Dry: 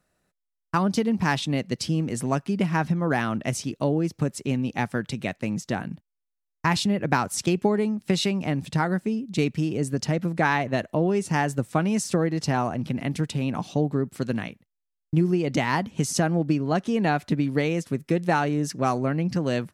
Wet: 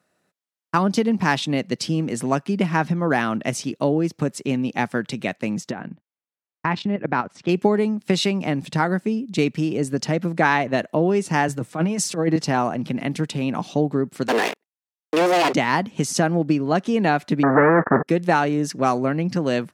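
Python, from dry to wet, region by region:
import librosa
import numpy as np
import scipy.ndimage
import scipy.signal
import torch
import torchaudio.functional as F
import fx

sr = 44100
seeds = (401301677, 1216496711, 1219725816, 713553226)

y = fx.chain(x, sr, fx.lowpass(hz=2600.0, slope=12),
    fx.level_steps(step_db=12), at=(5.71, 7.49))
y = fx.chain(y, sr, fx.over_compress(threshold_db=-24.0, ratio=-0.5),
    fx.comb(ms=6.4, depth=0.39),
    fx.band_widen(depth_pct=40), at=(11.48, 12.36))
y = fx.chain(y, sr, fx.lower_of_two(delay_ms=1.1),
    fx.highpass(hz=340.0, slope=24),
    fx.leveller(passes=5), at=(14.28, 15.53))
y = fx.chain(y, sr, fx.leveller(passes=5),
    fx.cheby_ripple(hz=1800.0, ripple_db=6),
    fx.spectral_comp(ratio=2.0), at=(17.43, 18.08))
y = scipy.signal.sosfilt(scipy.signal.butter(2, 170.0, 'highpass', fs=sr, output='sos'), y)
y = fx.high_shelf(y, sr, hz=8100.0, db=-5.5)
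y = F.gain(torch.from_numpy(y), 4.5).numpy()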